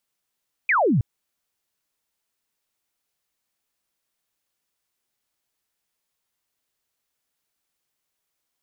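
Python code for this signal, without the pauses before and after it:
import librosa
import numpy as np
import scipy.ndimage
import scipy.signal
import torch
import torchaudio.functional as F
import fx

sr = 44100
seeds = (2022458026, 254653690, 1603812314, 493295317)

y = fx.laser_zap(sr, level_db=-16.0, start_hz=2500.0, end_hz=100.0, length_s=0.32, wave='sine')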